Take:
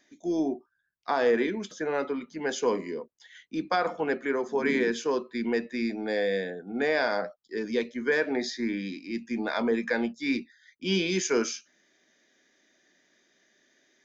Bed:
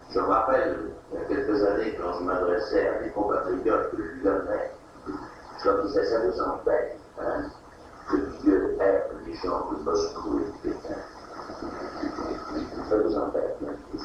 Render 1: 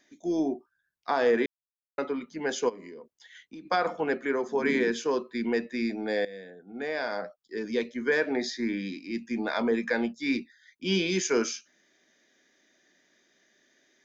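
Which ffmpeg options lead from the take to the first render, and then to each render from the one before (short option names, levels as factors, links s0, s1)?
-filter_complex "[0:a]asplit=3[s0][s1][s2];[s0]afade=t=out:st=2.68:d=0.02[s3];[s1]acompressor=threshold=0.00891:ratio=6:attack=3.2:release=140:knee=1:detection=peak,afade=t=in:st=2.68:d=0.02,afade=t=out:st=3.65:d=0.02[s4];[s2]afade=t=in:st=3.65:d=0.02[s5];[s3][s4][s5]amix=inputs=3:normalize=0,asplit=4[s6][s7][s8][s9];[s6]atrim=end=1.46,asetpts=PTS-STARTPTS,afade=t=out:st=1.456:d=0.004:c=hsin[s10];[s7]atrim=start=1.46:end=1.98,asetpts=PTS-STARTPTS,volume=0[s11];[s8]atrim=start=1.98:end=6.25,asetpts=PTS-STARTPTS,afade=t=in:d=0.004:c=hsin,afade=t=out:st=4.266:d=0.004:c=hsin:silence=0.149624[s12];[s9]atrim=start=6.25,asetpts=PTS-STARTPTS,afade=t=in:d=1.69:silence=0.149624[s13];[s10][s11][s12][s13]concat=n=4:v=0:a=1"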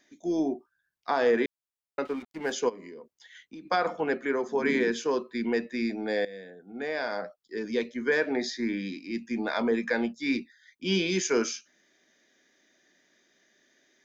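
-filter_complex "[0:a]asettb=1/sr,asplit=3[s0][s1][s2];[s0]atrim=end=2.054[s3];[s1]atrim=start=2.05:end=2.52,asetpts=PTS-STARTPTS,afade=t=in:d=0.004:c=qsin,afade=t=out:st=0.466:d=0.004:c=qsin,aeval=exprs='sgn(val(0))*max(abs(val(0))-0.00531,0)':c=same[s4];[s2]atrim=start=2.516[s5];[s3][s4]acrossfade=d=0.004:c1=hsin:c2=qsin[s6];[s6][s5]acrossfade=d=0.004:c1=qsin:c2=hsin"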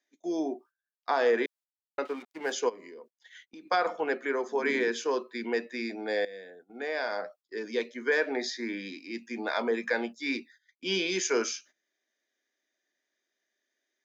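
-af "highpass=350,agate=range=0.158:threshold=0.00224:ratio=16:detection=peak"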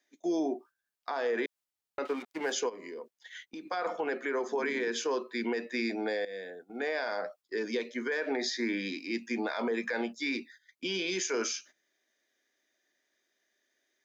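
-filter_complex "[0:a]asplit=2[s0][s1];[s1]acompressor=threshold=0.0158:ratio=6,volume=0.75[s2];[s0][s2]amix=inputs=2:normalize=0,alimiter=limit=0.0708:level=0:latency=1:release=60"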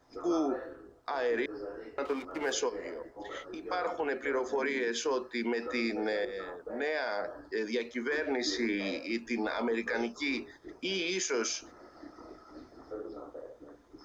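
-filter_complex "[1:a]volume=0.126[s0];[0:a][s0]amix=inputs=2:normalize=0"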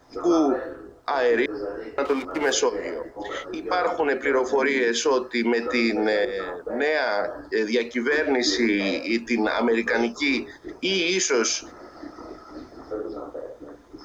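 -af "volume=3.16"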